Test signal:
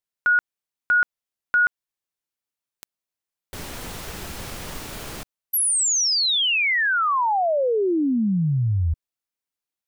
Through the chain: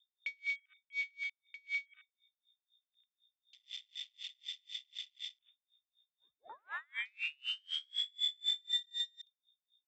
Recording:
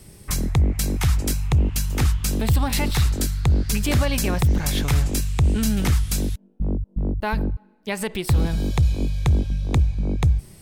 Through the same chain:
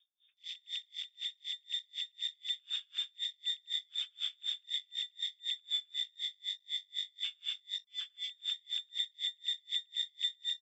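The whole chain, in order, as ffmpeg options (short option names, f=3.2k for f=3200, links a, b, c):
-filter_complex "[0:a]highpass=f=67:p=1,acrossover=split=150 2100:gain=0.1 1 0.224[a][b][c];[a][b][c]amix=inputs=3:normalize=0,asplit=2[d][e];[e]aecho=0:1:110.8|204.1|265.3:0.708|0.708|0.355[f];[d][f]amix=inputs=2:normalize=0,asubboost=boost=7:cutoff=180,acompressor=threshold=-29dB:ratio=2.5:attack=0.11:release=70:knee=1:detection=peak,aeval=exprs='val(0)+0.00398*(sin(2*PI*60*n/s)+sin(2*PI*2*60*n/s)/2+sin(2*PI*3*60*n/s)/3+sin(2*PI*4*60*n/s)/4+sin(2*PI*5*60*n/s)/5)':c=same,adynamicsmooth=sensitivity=2:basefreq=1.5k,lowpass=f=3.1k:t=q:w=0.5098,lowpass=f=3.1k:t=q:w=0.6013,lowpass=f=3.1k:t=q:w=0.9,lowpass=f=3.1k:t=q:w=2.563,afreqshift=-3700,asplit=2[g][h];[h]adelay=172,lowpass=f=2.2k:p=1,volume=-15dB,asplit=2[i][j];[j]adelay=172,lowpass=f=2.2k:p=1,volume=0.39,asplit=2[k][l];[l]adelay=172,lowpass=f=2.2k:p=1,volume=0.39,asplit=2[m][n];[n]adelay=172,lowpass=f=2.2k:p=1,volume=0.39[o];[i][k][m][o]amix=inputs=4:normalize=0[p];[g][p]amix=inputs=2:normalize=0,afwtdn=0.0158,aeval=exprs='val(0)*pow(10,-38*(0.5-0.5*cos(2*PI*4*n/s))/20)':c=same,volume=-4.5dB"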